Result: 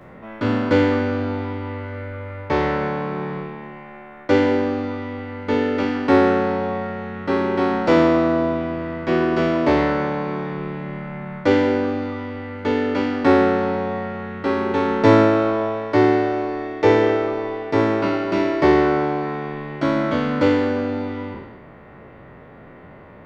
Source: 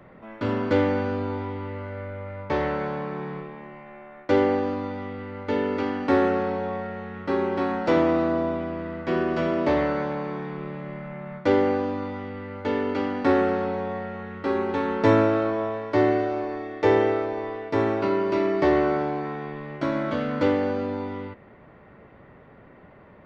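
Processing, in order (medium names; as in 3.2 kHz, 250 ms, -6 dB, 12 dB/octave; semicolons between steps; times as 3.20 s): spectral sustain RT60 1.19 s; de-hum 196.2 Hz, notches 29; trim +4.5 dB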